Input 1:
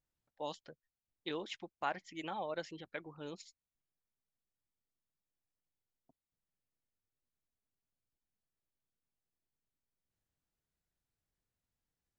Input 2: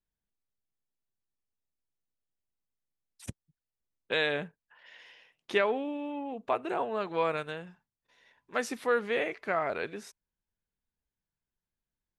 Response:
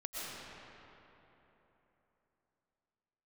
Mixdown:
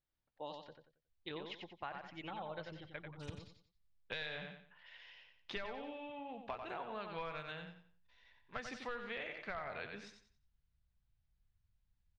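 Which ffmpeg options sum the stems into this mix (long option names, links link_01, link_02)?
-filter_complex "[0:a]volume=-3dB,asplit=2[link_01][link_02];[link_02]volume=-6dB[link_03];[1:a]aemphasis=mode=production:type=bsi,volume=20.5dB,asoftclip=hard,volume=-20.5dB,volume=-6dB,asplit=2[link_04][link_05];[link_05]volume=-7.5dB[link_06];[link_03][link_06]amix=inputs=2:normalize=0,aecho=0:1:91|182|273|364:1|0.3|0.09|0.027[link_07];[link_01][link_04][link_07]amix=inputs=3:normalize=0,lowpass=frequency=4400:width=0.5412,lowpass=frequency=4400:width=1.3066,asubboost=boost=12:cutoff=100,acompressor=threshold=-40dB:ratio=6"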